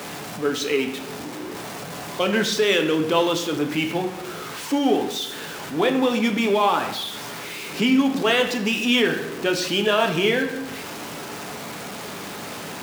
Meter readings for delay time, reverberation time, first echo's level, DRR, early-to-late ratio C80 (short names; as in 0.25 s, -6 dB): none, 0.80 s, none, 4.0 dB, 11.0 dB